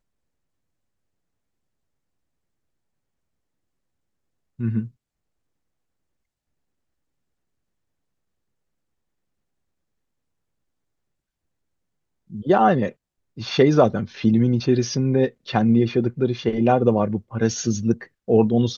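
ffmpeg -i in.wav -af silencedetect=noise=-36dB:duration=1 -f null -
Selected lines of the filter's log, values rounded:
silence_start: 0.00
silence_end: 4.59 | silence_duration: 4.59
silence_start: 4.87
silence_end: 12.32 | silence_duration: 7.45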